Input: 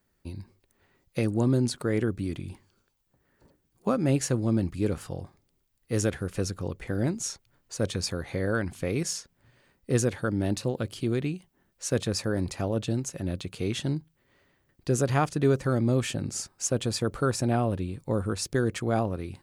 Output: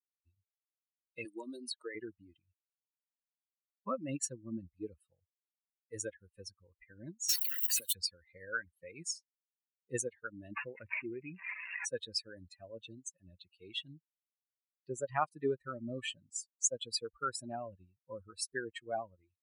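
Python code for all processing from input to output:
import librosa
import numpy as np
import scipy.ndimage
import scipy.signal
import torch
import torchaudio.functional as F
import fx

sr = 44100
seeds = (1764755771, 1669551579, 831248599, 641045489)

y = fx.chain(x, sr, fx.highpass(hz=280.0, slope=12),
    fx.band_squash(depth_pct=70), at=(1.25, 1.95))
y = fx.chain(y, sr, fx.crossing_spikes(level_db=-22.5),
    fx.band_squash(depth_pct=100), at=(7.29, 7.93))
y = fx.chain(y, sr, fx.crossing_spikes(level_db=-34.5),
    fx.resample_bad(factor=8, down='none', up='filtered'),
    fx.env_flatten(amount_pct=50), at=(10.51, 11.85))
y = fx.chain(y, sr, fx.highpass(hz=58.0, slope=12),
    fx.high_shelf(hz=10000.0, db=-9.0), at=(13.86, 15.25))
y = fx.bin_expand(y, sr, power=3.0)
y = fx.highpass(y, sr, hz=1100.0, slope=6)
y = y * librosa.db_to_amplitude(3.0)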